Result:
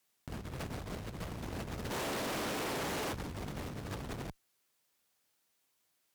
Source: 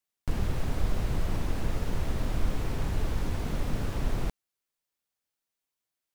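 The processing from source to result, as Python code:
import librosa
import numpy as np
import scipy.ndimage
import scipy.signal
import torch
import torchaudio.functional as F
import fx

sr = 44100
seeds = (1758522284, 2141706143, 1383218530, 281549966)

y = fx.highpass(x, sr, hz=fx.steps((0.0, 81.0), (1.9, 310.0), (3.13, 80.0)), slope=12)
y = fx.over_compress(y, sr, threshold_db=-40.0, ratio=-0.5)
y = fx.tube_stage(y, sr, drive_db=43.0, bias=0.6)
y = y * librosa.db_to_amplitude(8.5)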